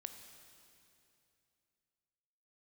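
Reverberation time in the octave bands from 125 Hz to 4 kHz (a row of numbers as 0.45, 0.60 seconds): 3.1, 2.9, 2.8, 2.6, 2.6, 2.6 seconds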